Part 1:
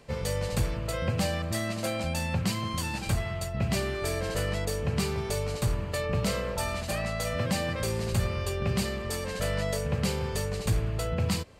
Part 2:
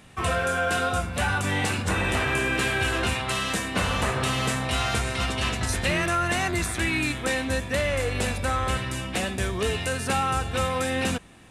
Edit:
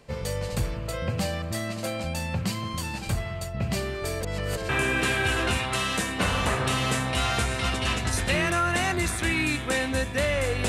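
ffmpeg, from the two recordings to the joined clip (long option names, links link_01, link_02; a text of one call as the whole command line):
ffmpeg -i cue0.wav -i cue1.wav -filter_complex "[0:a]apad=whole_dur=10.68,atrim=end=10.68,asplit=2[link_01][link_02];[link_01]atrim=end=4.232[link_03];[link_02]atrim=start=4.228:end=4.692,asetpts=PTS-STARTPTS,areverse[link_04];[1:a]atrim=start=2.248:end=8.24[link_05];[link_03][link_04]acrossfade=duration=0.004:curve1=hsin:curve2=hsin[link_06];[link_06][link_05]acrossfade=duration=0.004:curve1=hsin:curve2=hsin" out.wav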